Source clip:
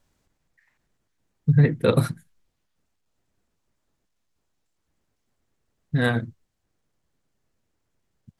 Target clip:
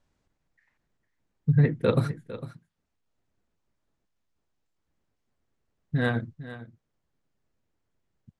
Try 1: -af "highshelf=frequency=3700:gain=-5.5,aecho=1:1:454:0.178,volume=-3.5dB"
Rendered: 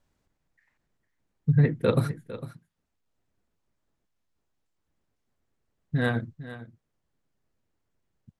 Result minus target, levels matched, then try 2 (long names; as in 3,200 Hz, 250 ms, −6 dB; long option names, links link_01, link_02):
8,000 Hz band +4.0 dB
-af "lowpass=8700,highshelf=frequency=3700:gain=-5.5,aecho=1:1:454:0.178,volume=-3.5dB"